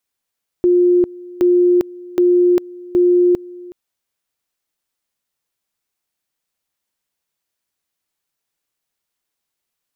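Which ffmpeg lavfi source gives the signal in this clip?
ffmpeg -f lavfi -i "aevalsrc='pow(10,(-9-22*gte(mod(t,0.77),0.4))/20)*sin(2*PI*355*t)':duration=3.08:sample_rate=44100" out.wav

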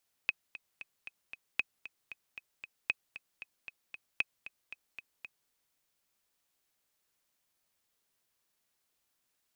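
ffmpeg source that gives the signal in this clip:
ffmpeg -f lavfi -i "aevalsrc='pow(10,(-15-15.5*gte(mod(t,5*60/230),60/230))/20)*sin(2*PI*2540*mod(t,60/230))*exp(-6.91*mod(t,60/230)/0.03)':duration=5.21:sample_rate=44100" out.wav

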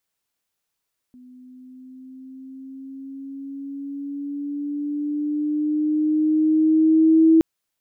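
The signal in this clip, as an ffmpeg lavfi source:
ffmpeg -f lavfi -i "aevalsrc='pow(10,(-10+33*(t/6.27-1))/20)*sin(2*PI*250*6.27/(4.5*log(2)/12)*(exp(4.5*log(2)/12*t/6.27)-1))':duration=6.27:sample_rate=44100" out.wav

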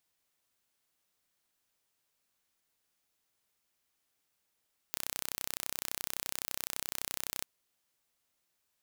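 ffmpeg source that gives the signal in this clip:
ffmpeg -f lavfi -i "aevalsrc='0.398*eq(mod(n,1387),0)':duration=2.51:sample_rate=44100" out.wav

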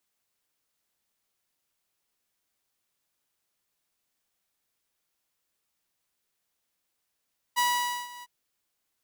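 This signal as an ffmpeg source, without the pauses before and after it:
ffmpeg -f lavfi -i "aevalsrc='0.112*(2*mod(974*t,1)-1)':duration=0.705:sample_rate=44100,afade=type=in:duration=0.025,afade=type=out:start_time=0.025:duration=0.495:silence=0.1,afade=type=out:start_time=0.67:duration=0.035" out.wav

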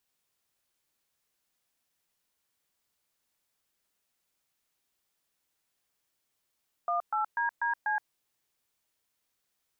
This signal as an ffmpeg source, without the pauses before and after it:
ffmpeg -f lavfi -i "aevalsrc='0.0355*clip(min(mod(t,0.245),0.122-mod(t,0.245))/0.002,0,1)*(eq(floor(t/0.245),0)*(sin(2*PI*697*mod(t,0.245))+sin(2*PI*1209*mod(t,0.245)))+eq(floor(t/0.245),1)*(sin(2*PI*852*mod(t,0.245))+sin(2*PI*1336*mod(t,0.245)))+eq(floor(t/0.245),2)*(sin(2*PI*941*mod(t,0.245))+sin(2*PI*1633*mod(t,0.245)))+eq(floor(t/0.245),3)*(sin(2*PI*941*mod(t,0.245))+sin(2*PI*1633*mod(t,0.245)))+eq(floor(t/0.245),4)*(sin(2*PI*852*mod(t,0.245))+sin(2*PI*1633*mod(t,0.245))))':duration=1.225:sample_rate=44100" out.wav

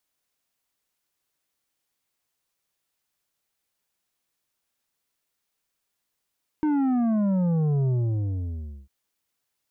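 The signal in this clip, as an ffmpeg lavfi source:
ffmpeg -f lavfi -i "aevalsrc='0.0891*clip((2.25-t)/1,0,1)*tanh(2.51*sin(2*PI*310*2.25/log(65/310)*(exp(log(65/310)*t/2.25)-1)))/tanh(2.51)':duration=2.25:sample_rate=44100" out.wav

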